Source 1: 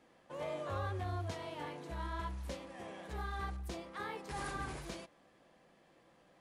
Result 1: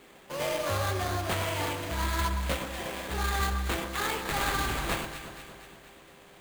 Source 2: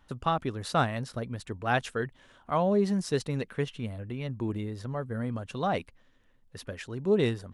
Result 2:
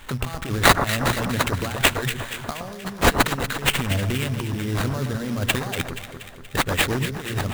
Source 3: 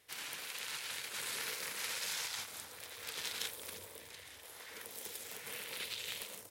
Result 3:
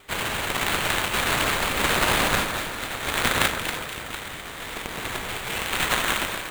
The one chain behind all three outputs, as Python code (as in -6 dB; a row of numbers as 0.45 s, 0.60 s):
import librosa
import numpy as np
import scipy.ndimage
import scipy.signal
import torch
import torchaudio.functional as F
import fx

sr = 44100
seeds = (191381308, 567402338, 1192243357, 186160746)

p1 = fx.hum_notches(x, sr, base_hz=60, count=2)
p2 = fx.quant_float(p1, sr, bits=2)
p3 = p1 + (p2 * 10.0 ** (-7.0 / 20.0))
p4 = fx.over_compress(p3, sr, threshold_db=-35.0, ratio=-1.0)
p5 = fx.peak_eq(p4, sr, hz=4100.0, db=14.0, octaves=1.7)
p6 = fx.sample_hold(p5, sr, seeds[0], rate_hz=5500.0, jitter_pct=20)
p7 = p6 + 10.0 ** (-66.0 / 20.0) * np.sin(2.0 * np.pi * 400.0 * np.arange(len(p6)) / sr)
p8 = fx.low_shelf(p7, sr, hz=100.0, db=5.0)
p9 = fx.echo_alternate(p8, sr, ms=119, hz=1500.0, feedback_pct=74, wet_db=-7)
y = p9 * 10.0 ** (4.5 / 20.0)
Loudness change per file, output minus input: +11.5 LU, +8.0 LU, +17.0 LU